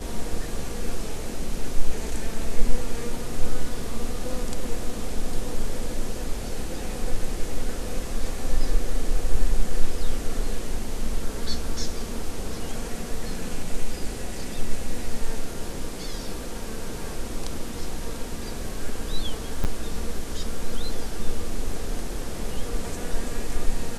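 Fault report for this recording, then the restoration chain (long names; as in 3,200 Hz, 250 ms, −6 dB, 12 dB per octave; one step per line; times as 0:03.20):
0:19.64–0:19.65: drop-out 8.8 ms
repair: repair the gap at 0:19.64, 8.8 ms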